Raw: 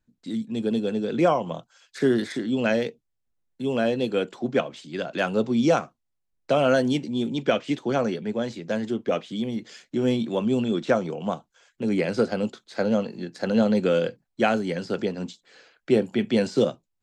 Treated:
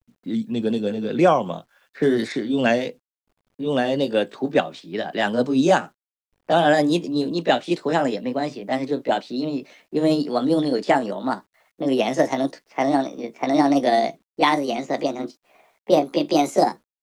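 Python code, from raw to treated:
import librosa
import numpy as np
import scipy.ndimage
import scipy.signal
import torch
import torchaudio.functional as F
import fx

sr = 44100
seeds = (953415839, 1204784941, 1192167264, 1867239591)

y = fx.pitch_glide(x, sr, semitones=6.5, runs='starting unshifted')
y = fx.env_lowpass(y, sr, base_hz=1200.0, full_db=-21.5)
y = fx.quant_dither(y, sr, seeds[0], bits=12, dither='none')
y = F.gain(torch.from_numpy(y), 4.5).numpy()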